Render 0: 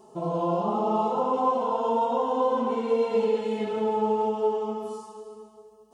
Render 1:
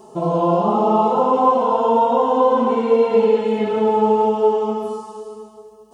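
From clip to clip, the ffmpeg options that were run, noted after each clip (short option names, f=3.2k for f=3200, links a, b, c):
-filter_complex "[0:a]acrossover=split=3200[a][b];[b]acompressor=threshold=-58dB:ratio=4:attack=1:release=60[c];[a][c]amix=inputs=2:normalize=0,volume=9dB"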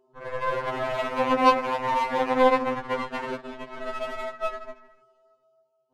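-af "aeval=exprs='0.668*(cos(1*acos(clip(val(0)/0.668,-1,1)))-cos(1*PI/2))+0.0531*(cos(3*acos(clip(val(0)/0.668,-1,1)))-cos(3*PI/2))+0.0944*(cos(7*acos(clip(val(0)/0.668,-1,1)))-cos(7*PI/2))':c=same,adynamicsmooth=sensitivity=5:basefreq=3.1k,afftfilt=real='re*2.45*eq(mod(b,6),0)':imag='im*2.45*eq(mod(b,6),0)':win_size=2048:overlap=0.75,volume=-5.5dB"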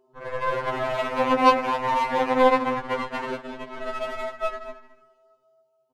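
-af "aecho=1:1:211:0.158,volume=1.5dB"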